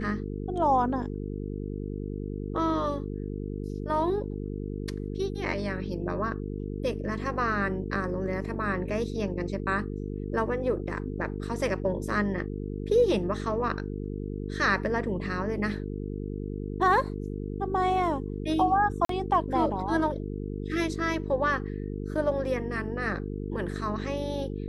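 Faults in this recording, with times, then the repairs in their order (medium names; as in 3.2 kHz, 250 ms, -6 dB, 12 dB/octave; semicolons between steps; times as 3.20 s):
buzz 50 Hz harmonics 9 -34 dBFS
19.05–19.09 s: dropout 43 ms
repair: de-hum 50 Hz, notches 9; interpolate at 19.05 s, 43 ms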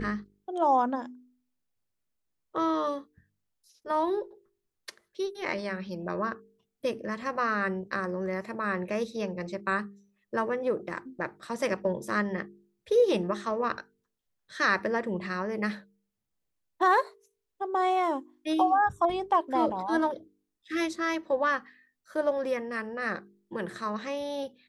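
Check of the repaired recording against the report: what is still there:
nothing left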